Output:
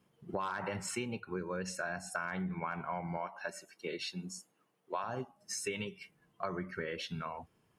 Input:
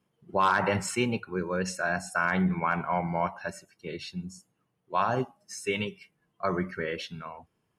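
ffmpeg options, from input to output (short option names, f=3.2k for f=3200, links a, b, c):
-filter_complex "[0:a]asettb=1/sr,asplit=3[a][b][c];[a]atrim=end=3.174[d];[b]atrim=start=3.17:end=5.04,asetpts=PTS-STARTPTS,afade=t=in:d=0.004:c=qsin,afade=t=out:st=1.866:d=0.004:c=qsin,highpass=280[e];[c]atrim=start=5.036[f];[d][e]acrossfade=d=0.004:c1=hsin:c2=qsin[g];[g][f]acrossfade=d=0.004:c1=qsin:c2=hsin,acompressor=threshold=-39dB:ratio=6,volume=3.5dB"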